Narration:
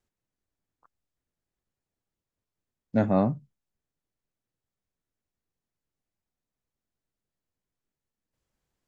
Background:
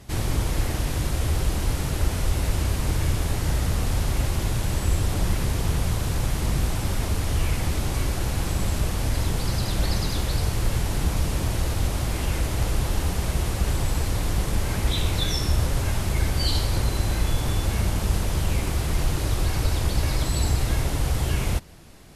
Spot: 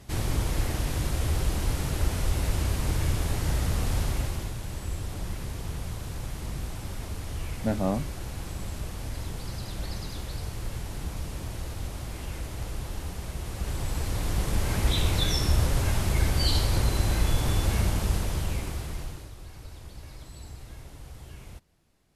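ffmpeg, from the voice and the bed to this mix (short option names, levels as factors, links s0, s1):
-filter_complex "[0:a]adelay=4700,volume=0.596[s0];[1:a]volume=2.11,afade=t=out:st=4.01:d=0.54:silence=0.421697,afade=t=in:st=13.41:d=1.45:silence=0.334965,afade=t=out:st=17.75:d=1.56:silence=0.105925[s1];[s0][s1]amix=inputs=2:normalize=0"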